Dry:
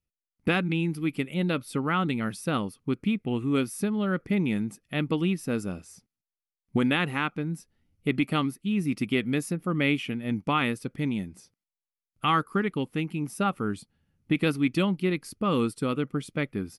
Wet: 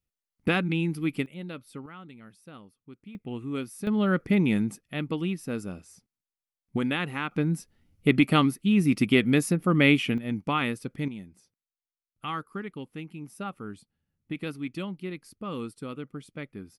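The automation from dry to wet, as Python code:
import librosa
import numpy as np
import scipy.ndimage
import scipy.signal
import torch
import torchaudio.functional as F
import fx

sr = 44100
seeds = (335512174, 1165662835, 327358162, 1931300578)

y = fx.gain(x, sr, db=fx.steps((0.0, 0.0), (1.26, -11.5), (1.86, -19.5), (3.15, -7.0), (3.87, 3.0), (4.81, -3.5), (7.31, 5.0), (10.18, -1.5), (11.08, -9.5)))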